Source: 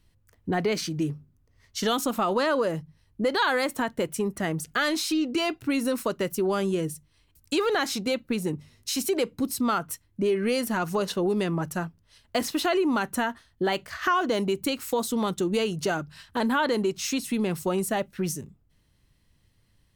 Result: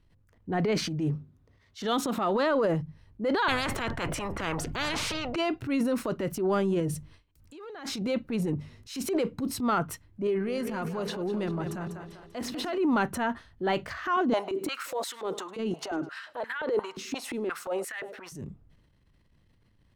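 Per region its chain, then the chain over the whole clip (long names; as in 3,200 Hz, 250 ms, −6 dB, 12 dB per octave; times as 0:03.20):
0:01.15–0:02.51: high-pass filter 110 Hz 6 dB per octave + parametric band 3,700 Hz +6 dB 0.28 octaves
0:03.48–0:05.36: spectral tilt −4 dB per octave + every bin compressed towards the loudest bin 10 to 1
0:06.80–0:08.06: noise gate with hold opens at −53 dBFS, closes at −63 dBFS + compressor whose output falls as the input rises −32 dBFS, ratio −0.5
0:10.27–0:12.78: downward compressor 1.5 to 1, threshold −37 dBFS + echo with a time of its own for lows and highs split 320 Hz, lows 110 ms, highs 196 ms, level −9.5 dB
0:14.16–0:18.32: downward compressor, threshold −29 dBFS + repeating echo 104 ms, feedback 46%, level −23 dB + high-pass on a step sequencer 5.7 Hz 250–1,800 Hz
whole clip: low-pass filter 1,800 Hz 6 dB per octave; transient designer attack −8 dB, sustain +8 dB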